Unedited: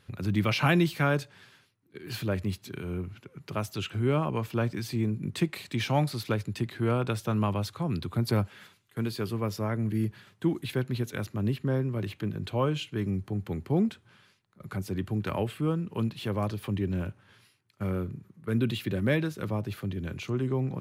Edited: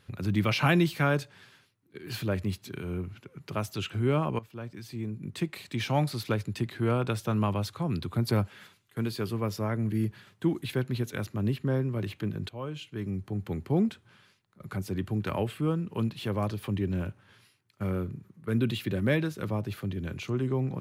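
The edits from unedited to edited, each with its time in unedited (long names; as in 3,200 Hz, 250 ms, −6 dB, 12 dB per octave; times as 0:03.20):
0:04.39–0:06.14: fade in, from −16.5 dB
0:12.49–0:13.50: fade in, from −14 dB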